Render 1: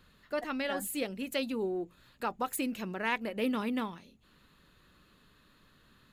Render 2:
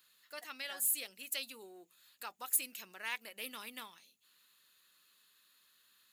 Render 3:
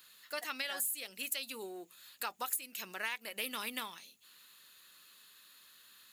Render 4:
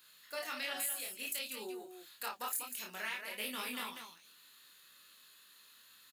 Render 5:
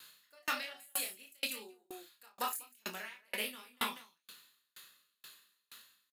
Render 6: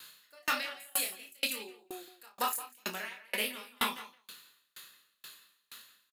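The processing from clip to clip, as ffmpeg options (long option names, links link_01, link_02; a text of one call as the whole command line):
ffmpeg -i in.wav -af "aderivative,volume=4.5dB" out.wav
ffmpeg -i in.wav -af "acompressor=threshold=-42dB:ratio=12,volume=9dB" out.wav
ffmpeg -i in.wav -af "flanger=delay=19:depth=6.4:speed=0.58,aecho=1:1:32.07|195.3:0.631|0.447" out.wav
ffmpeg -i in.wav -filter_complex "[0:a]asplit=2[link_01][link_02];[link_02]adelay=37,volume=-8dB[link_03];[link_01][link_03]amix=inputs=2:normalize=0,aeval=exprs='val(0)*pow(10,-40*if(lt(mod(2.1*n/s,1),2*abs(2.1)/1000),1-mod(2.1*n/s,1)/(2*abs(2.1)/1000),(mod(2.1*n/s,1)-2*abs(2.1)/1000)/(1-2*abs(2.1)/1000))/20)':channel_layout=same,volume=10dB" out.wav
ffmpeg -i in.wav -filter_complex "[0:a]asplit=2[link_01][link_02];[link_02]aeval=exprs='clip(val(0),-1,0.0473)':channel_layout=same,volume=-3dB[link_03];[link_01][link_03]amix=inputs=2:normalize=0,asplit=2[link_04][link_05];[link_05]adelay=170,highpass=300,lowpass=3400,asoftclip=type=hard:threshold=-23.5dB,volume=-15dB[link_06];[link_04][link_06]amix=inputs=2:normalize=0" out.wav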